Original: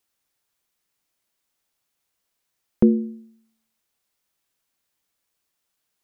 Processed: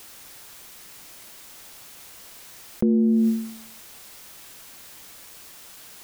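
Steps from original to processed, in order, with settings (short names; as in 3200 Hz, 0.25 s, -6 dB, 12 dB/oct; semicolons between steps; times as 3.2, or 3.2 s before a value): fast leveller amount 100%; gain -7.5 dB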